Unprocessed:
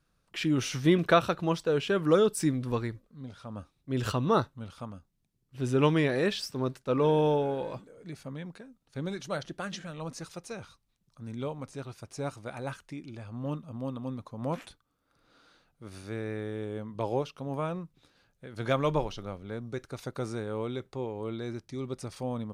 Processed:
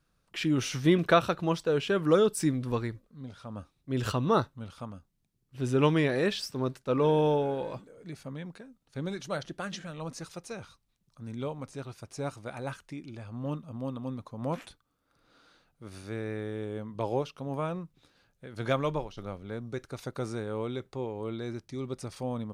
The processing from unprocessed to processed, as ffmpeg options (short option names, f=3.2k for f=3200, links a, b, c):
-filter_complex "[0:a]asplit=2[a][b];[a]atrim=end=19.17,asetpts=PTS-STARTPTS,afade=t=out:st=18.69:d=0.48:silence=0.334965[c];[b]atrim=start=19.17,asetpts=PTS-STARTPTS,afade=t=in:d=0.004:c=hsin:silence=0.334965[d];[c][d]concat=n=2:v=0:a=1"